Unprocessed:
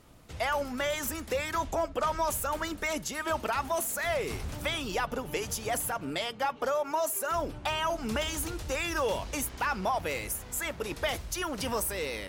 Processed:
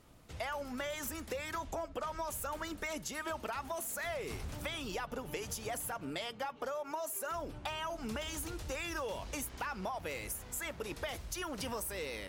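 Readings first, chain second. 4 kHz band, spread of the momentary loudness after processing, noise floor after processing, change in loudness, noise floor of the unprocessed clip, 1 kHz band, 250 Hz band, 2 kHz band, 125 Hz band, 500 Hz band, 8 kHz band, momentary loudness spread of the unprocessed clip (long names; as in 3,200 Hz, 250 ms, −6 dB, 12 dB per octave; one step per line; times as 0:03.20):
−7.5 dB, 3 LU, −51 dBFS, −8.0 dB, −45 dBFS, −9.0 dB, −6.5 dB, −8.0 dB, −6.5 dB, −8.5 dB, −7.0 dB, 4 LU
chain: downward compressor, threshold −31 dBFS, peak gain reduction 6.5 dB
level −4.5 dB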